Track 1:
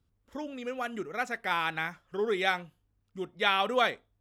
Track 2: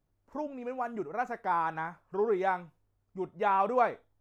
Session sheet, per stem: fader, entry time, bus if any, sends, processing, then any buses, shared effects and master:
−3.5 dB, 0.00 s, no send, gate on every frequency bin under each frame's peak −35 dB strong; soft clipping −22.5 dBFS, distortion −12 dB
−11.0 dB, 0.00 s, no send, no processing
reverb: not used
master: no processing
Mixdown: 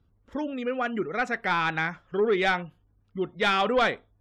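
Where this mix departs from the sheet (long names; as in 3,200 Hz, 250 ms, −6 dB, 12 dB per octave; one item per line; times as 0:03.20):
stem 1 −3.5 dB → +8.0 dB
master: extra low-pass filter 2,700 Hz 6 dB per octave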